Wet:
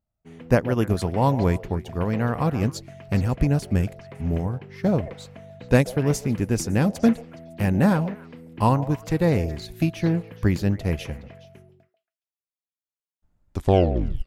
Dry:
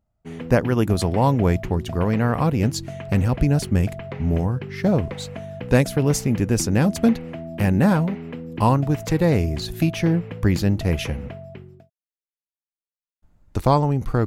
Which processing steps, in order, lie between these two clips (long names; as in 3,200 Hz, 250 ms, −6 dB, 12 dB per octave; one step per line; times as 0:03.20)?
turntable brake at the end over 0.75 s
echo through a band-pass that steps 139 ms, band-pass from 600 Hz, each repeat 1.4 octaves, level −8.5 dB
expander for the loud parts 1.5 to 1, over −31 dBFS